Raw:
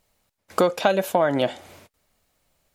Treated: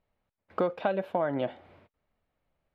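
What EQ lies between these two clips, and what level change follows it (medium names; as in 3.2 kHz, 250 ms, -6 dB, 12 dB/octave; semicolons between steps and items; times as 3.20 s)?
distance through air 440 m; -7.0 dB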